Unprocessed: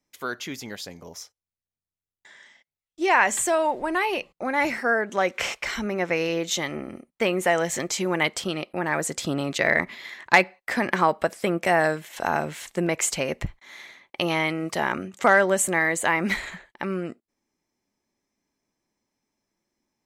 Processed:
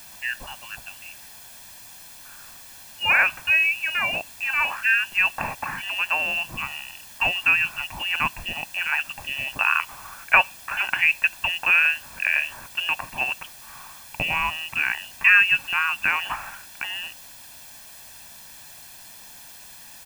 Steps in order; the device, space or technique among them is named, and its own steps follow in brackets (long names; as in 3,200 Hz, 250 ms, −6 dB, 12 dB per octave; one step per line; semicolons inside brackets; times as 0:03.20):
scrambled radio voice (band-pass filter 320–3,200 Hz; voice inversion scrambler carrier 3,200 Hz; white noise bed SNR 18 dB)
comb filter 1.2 ms, depth 59%